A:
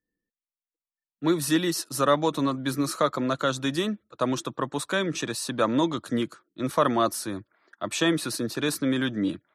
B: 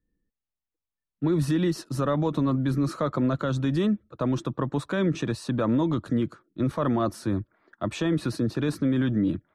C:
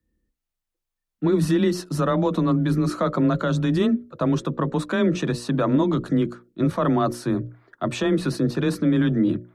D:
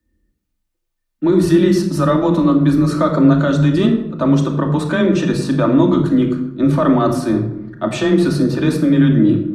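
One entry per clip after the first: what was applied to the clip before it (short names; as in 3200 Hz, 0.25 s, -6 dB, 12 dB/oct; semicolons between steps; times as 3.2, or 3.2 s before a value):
RIAA curve playback; limiter -16.5 dBFS, peak gain reduction 9 dB
frequency shift +19 Hz; notches 60/120/180/240/300/360/420/480/540/600 Hz; gain +4.5 dB
shoebox room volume 2300 m³, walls furnished, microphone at 2.6 m; gain +3.5 dB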